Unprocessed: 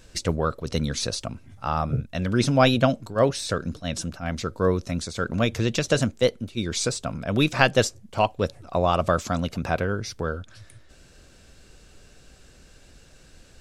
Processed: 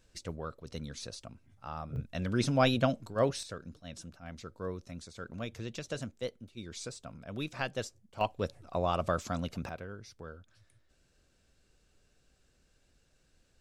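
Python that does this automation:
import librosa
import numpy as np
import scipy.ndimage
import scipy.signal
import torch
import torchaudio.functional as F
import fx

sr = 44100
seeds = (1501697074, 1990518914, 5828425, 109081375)

y = fx.gain(x, sr, db=fx.steps((0.0, -15.5), (1.96, -8.0), (3.43, -16.5), (8.21, -9.0), (9.69, -18.0)))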